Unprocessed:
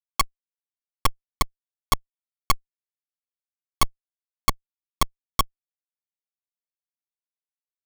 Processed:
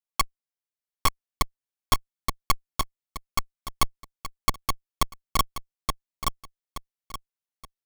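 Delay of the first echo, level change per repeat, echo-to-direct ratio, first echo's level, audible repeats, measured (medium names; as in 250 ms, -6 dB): 874 ms, -10.0 dB, -3.0 dB, -3.5 dB, 3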